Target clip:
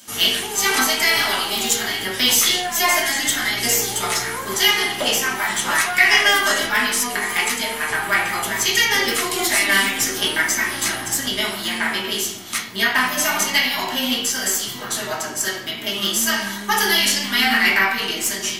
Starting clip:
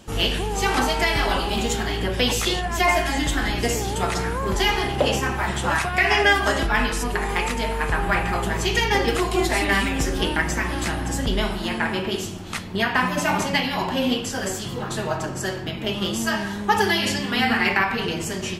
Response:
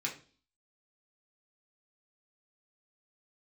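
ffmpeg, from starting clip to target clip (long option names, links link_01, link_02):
-filter_complex "[0:a]aemphasis=mode=production:type=riaa,aeval=exprs='0.794*(cos(1*acos(clip(val(0)/0.794,-1,1)))-cos(1*PI/2))+0.0224*(cos(8*acos(clip(val(0)/0.794,-1,1)))-cos(8*PI/2))':channel_layout=same[link_01];[1:a]atrim=start_sample=2205,asetrate=38808,aresample=44100[link_02];[link_01][link_02]afir=irnorm=-1:irlink=0,volume=-2dB"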